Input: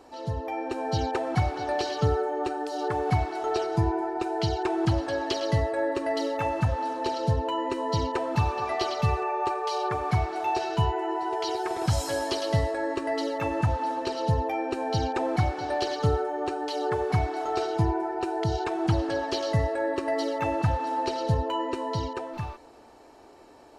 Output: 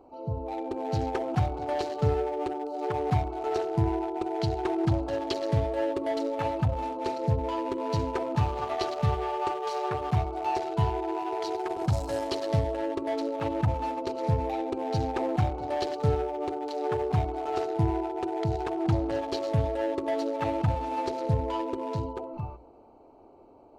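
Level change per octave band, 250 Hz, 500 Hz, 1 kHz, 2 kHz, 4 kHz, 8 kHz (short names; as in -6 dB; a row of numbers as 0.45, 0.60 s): -0.5, -1.0, -2.5, -6.5, -6.0, -7.0 dB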